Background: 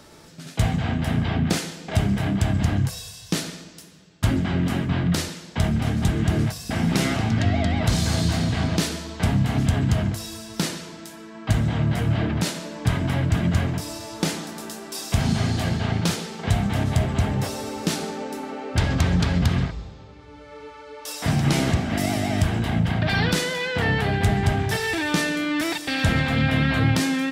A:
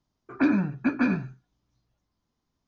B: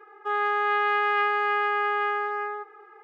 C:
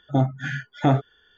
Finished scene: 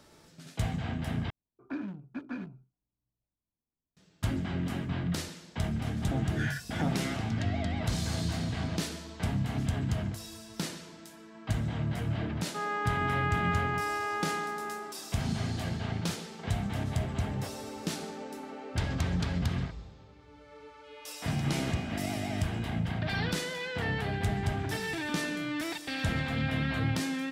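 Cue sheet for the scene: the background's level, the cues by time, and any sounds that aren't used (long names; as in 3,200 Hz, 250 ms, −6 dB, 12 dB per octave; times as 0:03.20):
background −10 dB
0:01.30: overwrite with A −14.5 dB + adaptive Wiener filter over 25 samples
0:05.97: mix in C −2.5 dB + downward compressor, threshold −27 dBFS
0:12.29: mix in B −8 dB
0:20.58: mix in B −10.5 dB + Butterworth high-pass 2,300 Hz 72 dB per octave
0:24.24: mix in A −9.5 dB + downward compressor, threshold −31 dBFS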